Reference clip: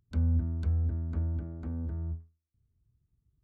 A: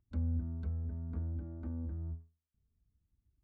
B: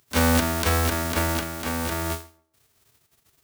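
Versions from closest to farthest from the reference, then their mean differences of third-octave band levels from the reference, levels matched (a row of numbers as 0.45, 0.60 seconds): A, B; 1.5, 19.5 decibels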